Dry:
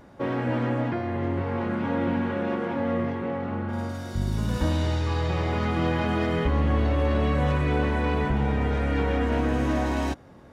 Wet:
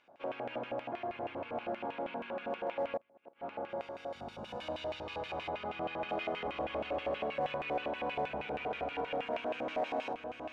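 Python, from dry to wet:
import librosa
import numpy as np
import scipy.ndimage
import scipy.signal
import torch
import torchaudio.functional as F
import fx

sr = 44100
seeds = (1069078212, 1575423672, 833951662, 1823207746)

p1 = fx.notch(x, sr, hz=1900.0, q=6.9)
p2 = p1 + fx.echo_single(p1, sr, ms=744, db=-5.0, dry=0)
p3 = fx.gate_flip(p2, sr, shuts_db=-18.0, range_db=-30, at=(2.96, 3.45))
p4 = fx.filter_lfo_bandpass(p3, sr, shape='square', hz=6.3, low_hz=670.0, high_hz=2600.0, q=3.4)
p5 = np.clip(p4, -10.0 ** (-29.5 / 20.0), 10.0 ** (-29.5 / 20.0))
p6 = p4 + (p5 * librosa.db_to_amplitude(-7.5))
p7 = fx.high_shelf(p6, sr, hz=3000.0, db=-8.5, at=(5.49, 6.09))
y = p7 * librosa.db_to_amplitude(-3.0)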